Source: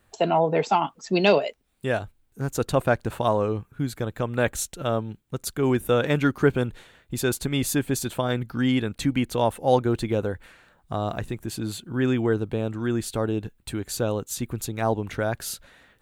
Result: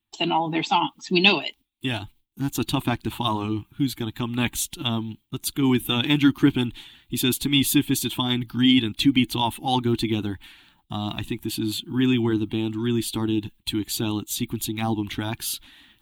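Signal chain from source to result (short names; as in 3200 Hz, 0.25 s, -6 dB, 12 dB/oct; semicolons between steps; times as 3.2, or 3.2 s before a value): bin magnitudes rounded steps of 15 dB; gate with hold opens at -50 dBFS; EQ curve 180 Hz 0 dB, 320 Hz +8 dB, 510 Hz -21 dB, 860 Hz +3 dB, 1500 Hz -5 dB, 3300 Hz +14 dB, 5100 Hz +2 dB, 7400 Hz +1 dB, 15000 Hz +10 dB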